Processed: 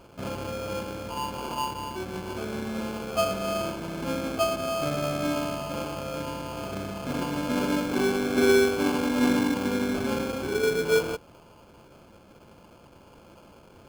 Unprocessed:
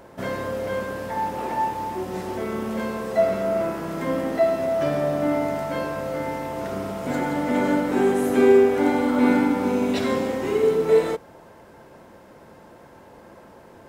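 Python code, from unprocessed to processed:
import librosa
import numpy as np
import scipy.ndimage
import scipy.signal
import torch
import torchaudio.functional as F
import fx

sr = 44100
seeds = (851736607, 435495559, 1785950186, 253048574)

y = fx.low_shelf(x, sr, hz=130.0, db=8.5)
y = fx.sample_hold(y, sr, seeds[0], rate_hz=1900.0, jitter_pct=0)
y = fx.high_shelf(y, sr, hz=5100.0, db=-4.5)
y = y * 10.0 ** (-6.0 / 20.0)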